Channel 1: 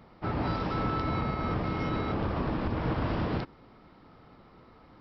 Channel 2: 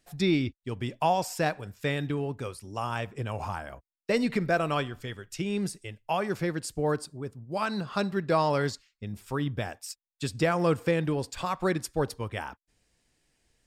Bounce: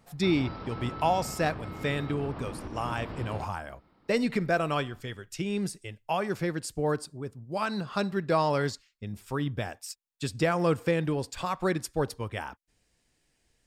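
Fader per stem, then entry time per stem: -9.0, -0.5 dB; 0.00, 0.00 s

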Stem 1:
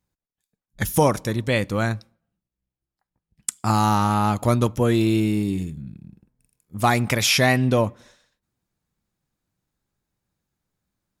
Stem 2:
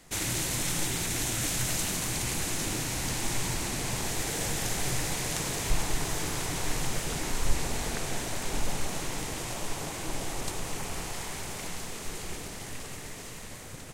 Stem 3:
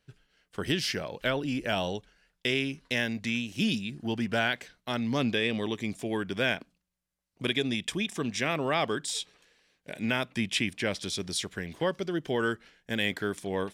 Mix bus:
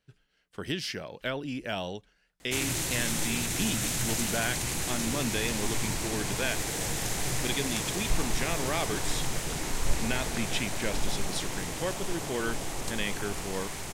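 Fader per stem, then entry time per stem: off, -0.5 dB, -4.0 dB; off, 2.40 s, 0.00 s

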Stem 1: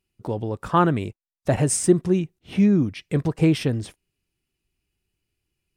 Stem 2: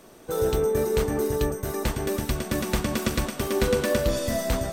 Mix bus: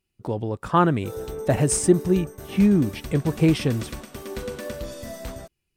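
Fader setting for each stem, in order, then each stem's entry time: 0.0, -9.5 dB; 0.00, 0.75 s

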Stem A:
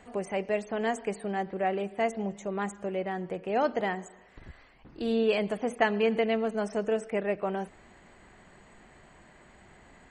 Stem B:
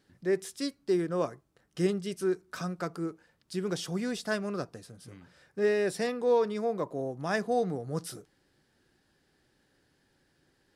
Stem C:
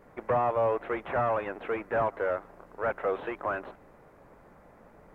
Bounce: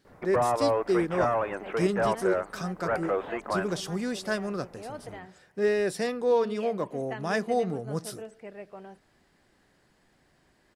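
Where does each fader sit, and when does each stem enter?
-13.5, +1.5, +1.0 dB; 1.30, 0.00, 0.05 s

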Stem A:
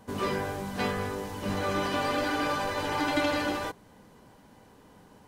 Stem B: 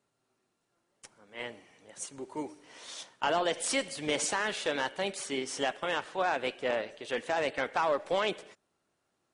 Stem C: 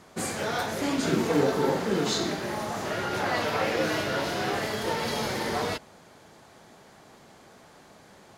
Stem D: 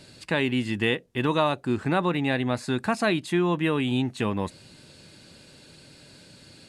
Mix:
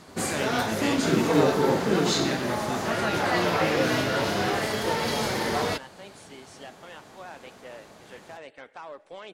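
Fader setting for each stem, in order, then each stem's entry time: -15.0, -13.0, +2.5, -7.5 dB; 0.00, 1.00, 0.00, 0.00 s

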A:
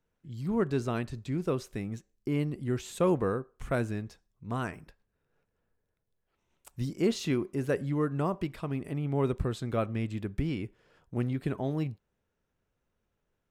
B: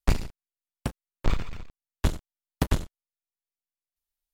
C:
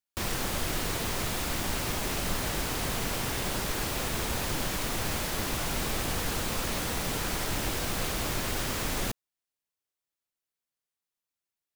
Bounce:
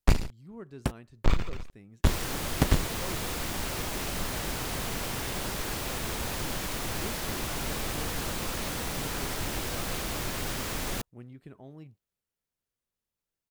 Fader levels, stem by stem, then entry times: -16.0, +1.0, -2.0 dB; 0.00, 0.00, 1.90 s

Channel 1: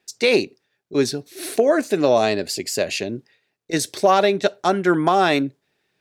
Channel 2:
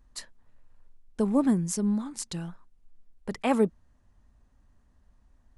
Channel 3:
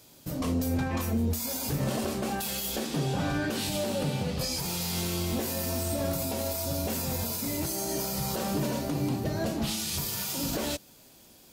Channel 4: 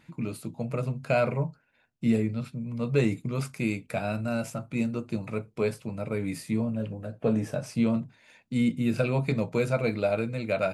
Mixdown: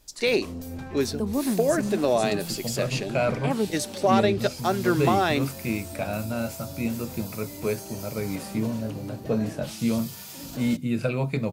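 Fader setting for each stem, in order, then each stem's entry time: -6.0, -3.0, -8.0, 0.0 dB; 0.00, 0.00, 0.00, 2.05 s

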